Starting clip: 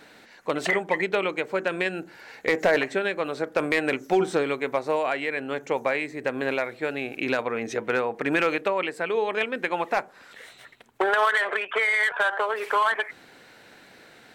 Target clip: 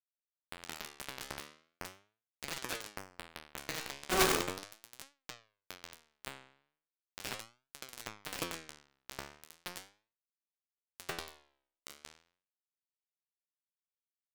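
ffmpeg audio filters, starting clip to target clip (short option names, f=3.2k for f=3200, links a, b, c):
-filter_complex "[0:a]afftfilt=real='re':imag='-im':win_size=8192:overlap=0.75,highpass=f=68:p=1,acrossover=split=450|3000[a][b][c];[b]acompressor=threshold=-39dB:ratio=8[d];[a][d][c]amix=inputs=3:normalize=0,aresample=16000,acrusher=bits=4:mode=log:mix=0:aa=0.000001,aresample=44100,aecho=1:1:76|85|117:0.119|0.251|0.531,acrusher=bits=3:mix=0:aa=0.000001,flanger=delay=6.9:depth=8.5:regen=85:speed=0.38:shape=triangular,aeval=exprs='(mod(39.8*val(0)+1,2)-1)/39.8':c=same,volume=12.5dB"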